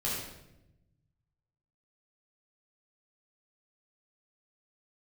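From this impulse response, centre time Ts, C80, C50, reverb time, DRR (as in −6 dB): 68 ms, 3.0 dB, 0.0 dB, 0.90 s, −7.0 dB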